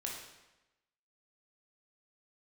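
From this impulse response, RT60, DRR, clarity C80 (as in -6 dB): 1.0 s, -2.0 dB, 5.5 dB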